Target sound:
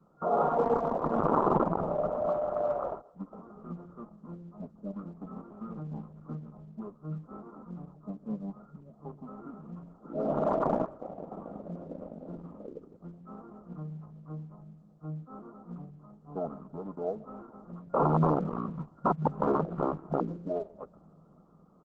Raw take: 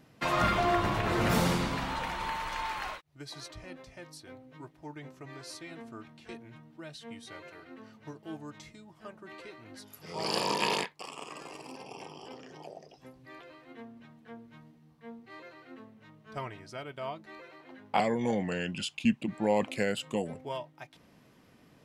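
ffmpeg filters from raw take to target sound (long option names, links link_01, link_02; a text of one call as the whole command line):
ffmpeg -i in.wav -filter_complex "[0:a]aecho=1:1:131|262|393:0.0891|0.0303|0.0103,adynamicequalizer=threshold=0.00501:dfrequency=920:dqfactor=2.2:tfrequency=920:tqfactor=2.2:attack=5:release=100:ratio=0.375:range=2.5:mode=boostabove:tftype=bell,aecho=1:1:1.1:0.38,acrossover=split=460[link_01][link_02];[link_01]dynaudnorm=framelen=260:gausssize=9:maxgain=10dB[link_03];[link_03][link_02]amix=inputs=2:normalize=0,asetrate=29433,aresample=44100,atempo=1.49831,aeval=exprs='(mod(6.31*val(0)+1,2)-1)/6.31':channel_layout=same,afftfilt=real='re*between(b*sr/4096,140,1400)':imag='im*between(b*sr/4096,140,1400)':win_size=4096:overlap=0.75" -ar 48000 -c:a libopus -b:a 10k out.opus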